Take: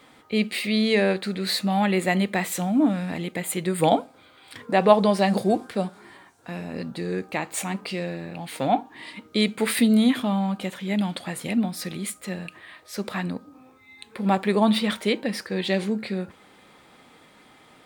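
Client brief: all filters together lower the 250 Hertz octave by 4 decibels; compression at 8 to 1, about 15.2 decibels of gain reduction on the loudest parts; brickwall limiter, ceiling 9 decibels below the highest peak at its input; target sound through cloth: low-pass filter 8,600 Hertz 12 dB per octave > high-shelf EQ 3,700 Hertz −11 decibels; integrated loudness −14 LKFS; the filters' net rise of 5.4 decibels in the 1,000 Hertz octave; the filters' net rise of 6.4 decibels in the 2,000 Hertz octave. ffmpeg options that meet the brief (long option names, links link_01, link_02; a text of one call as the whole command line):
ffmpeg -i in.wav -af "equalizer=frequency=250:width_type=o:gain=-5.5,equalizer=frequency=1000:width_type=o:gain=7,equalizer=frequency=2000:width_type=o:gain=8.5,acompressor=threshold=-21dB:ratio=8,alimiter=limit=-17.5dB:level=0:latency=1,lowpass=8600,highshelf=frequency=3700:gain=-11,volume=16.5dB" out.wav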